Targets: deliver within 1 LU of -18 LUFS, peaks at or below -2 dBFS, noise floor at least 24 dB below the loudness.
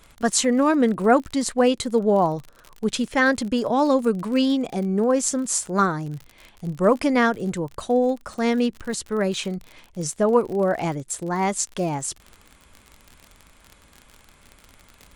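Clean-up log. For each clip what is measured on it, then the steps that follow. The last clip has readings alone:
ticks 44/s; loudness -22.0 LUFS; peak -4.5 dBFS; loudness target -18.0 LUFS
-> de-click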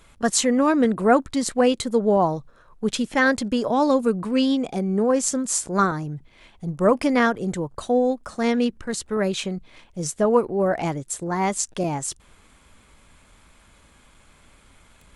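ticks 0.13/s; loudness -22.0 LUFS; peak -4.5 dBFS; loudness target -18.0 LUFS
-> gain +4 dB; limiter -2 dBFS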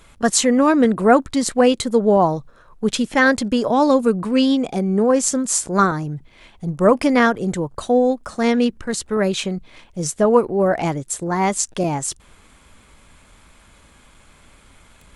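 loudness -18.0 LUFS; peak -2.0 dBFS; noise floor -51 dBFS

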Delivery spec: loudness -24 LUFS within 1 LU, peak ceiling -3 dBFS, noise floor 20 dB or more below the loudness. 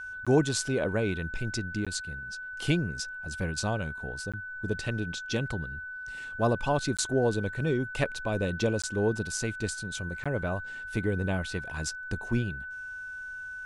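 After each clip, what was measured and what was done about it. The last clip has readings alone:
dropouts 6; longest dropout 16 ms; steady tone 1500 Hz; tone level -37 dBFS; loudness -31.0 LUFS; peak -11.5 dBFS; loudness target -24.0 LUFS
-> interpolate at 0.25/1.85/4.32/6.97/8.82/10.24, 16 ms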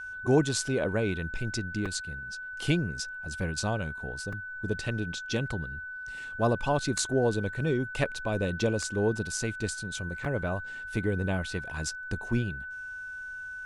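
dropouts 0; steady tone 1500 Hz; tone level -37 dBFS
-> notch 1500 Hz, Q 30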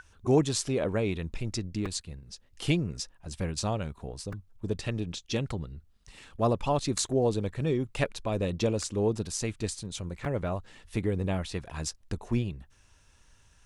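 steady tone none; loudness -31.0 LUFS; peak -12.0 dBFS; loudness target -24.0 LUFS
-> gain +7 dB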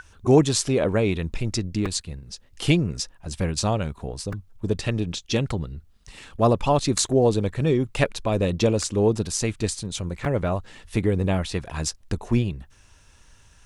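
loudness -24.0 LUFS; peak -5.0 dBFS; noise floor -55 dBFS

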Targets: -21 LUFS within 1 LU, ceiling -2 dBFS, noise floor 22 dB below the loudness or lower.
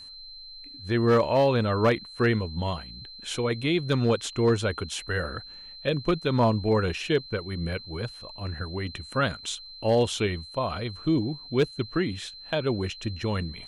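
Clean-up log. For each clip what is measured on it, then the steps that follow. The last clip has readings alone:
clipped 0.3%; flat tops at -14.5 dBFS; steady tone 4100 Hz; tone level -42 dBFS; loudness -27.0 LUFS; peak -14.5 dBFS; loudness target -21.0 LUFS
-> clip repair -14.5 dBFS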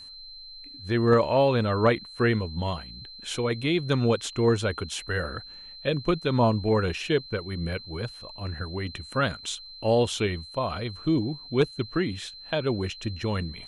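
clipped 0.0%; steady tone 4100 Hz; tone level -42 dBFS
-> notch 4100 Hz, Q 30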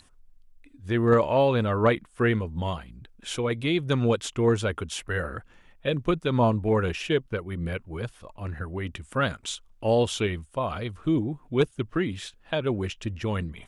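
steady tone none; loudness -27.0 LUFS; peak -7.0 dBFS; loudness target -21.0 LUFS
-> gain +6 dB; limiter -2 dBFS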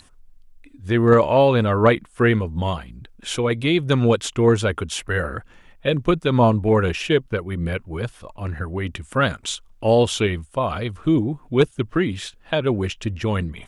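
loudness -21.0 LUFS; peak -2.0 dBFS; noise floor -52 dBFS

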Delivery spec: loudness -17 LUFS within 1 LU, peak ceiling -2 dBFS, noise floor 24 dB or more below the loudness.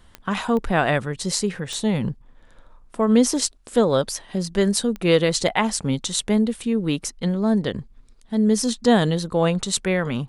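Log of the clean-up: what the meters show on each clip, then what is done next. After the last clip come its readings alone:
clicks 4; loudness -21.5 LUFS; peak -2.5 dBFS; loudness target -17.0 LUFS
-> de-click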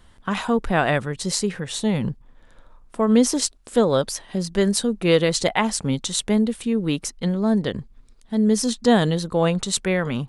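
clicks 0; loudness -21.5 LUFS; peak -2.5 dBFS; loudness target -17.0 LUFS
-> gain +4.5 dB; limiter -2 dBFS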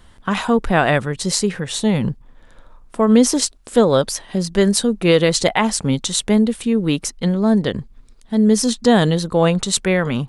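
loudness -17.5 LUFS; peak -2.0 dBFS; noise floor -47 dBFS

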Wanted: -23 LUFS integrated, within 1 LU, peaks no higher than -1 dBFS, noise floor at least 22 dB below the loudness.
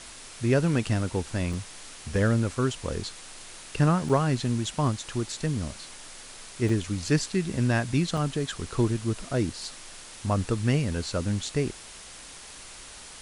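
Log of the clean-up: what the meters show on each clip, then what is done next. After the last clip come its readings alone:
dropouts 4; longest dropout 4.5 ms; noise floor -45 dBFS; noise floor target -50 dBFS; loudness -27.5 LUFS; peak -9.5 dBFS; loudness target -23.0 LUFS
-> interpolate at 1.53/4.09/6.69/8.17, 4.5 ms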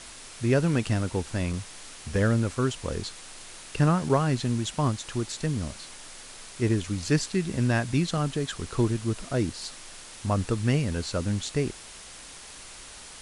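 dropouts 0; noise floor -45 dBFS; noise floor target -50 dBFS
-> denoiser 6 dB, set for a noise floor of -45 dBFS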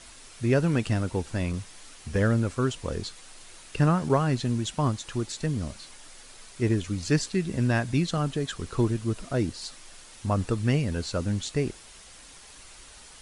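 noise floor -49 dBFS; noise floor target -50 dBFS
-> denoiser 6 dB, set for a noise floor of -49 dBFS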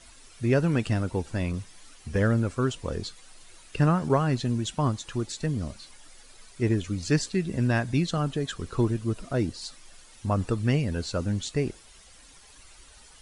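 noise floor -52 dBFS; loudness -27.5 LUFS; peak -10.0 dBFS; loudness target -23.0 LUFS
-> gain +4.5 dB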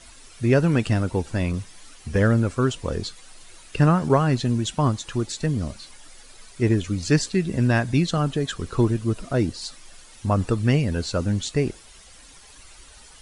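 loudness -23.0 LUFS; peak -5.5 dBFS; noise floor -48 dBFS

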